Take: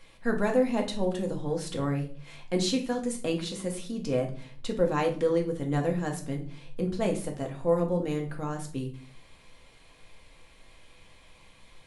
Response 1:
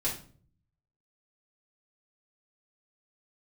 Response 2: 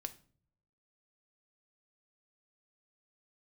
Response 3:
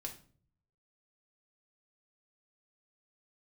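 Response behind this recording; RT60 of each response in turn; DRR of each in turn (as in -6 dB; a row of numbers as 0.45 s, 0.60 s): 3; 0.45 s, no single decay rate, 0.45 s; -6.5 dB, 9.0 dB, 1.5 dB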